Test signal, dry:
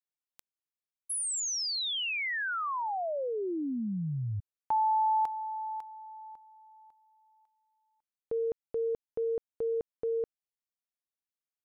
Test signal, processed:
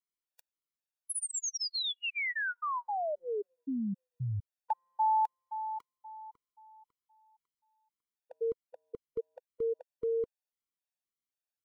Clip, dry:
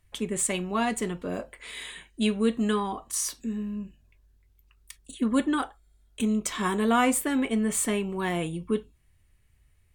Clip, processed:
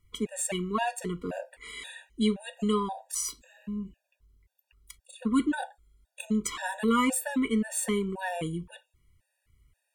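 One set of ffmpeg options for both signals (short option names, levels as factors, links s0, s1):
-af "afftfilt=real='re*gt(sin(2*PI*1.9*pts/sr)*(1-2*mod(floor(b*sr/1024/480),2)),0)':imag='im*gt(sin(2*PI*1.9*pts/sr)*(1-2*mod(floor(b*sr/1024/480),2)),0)':win_size=1024:overlap=0.75"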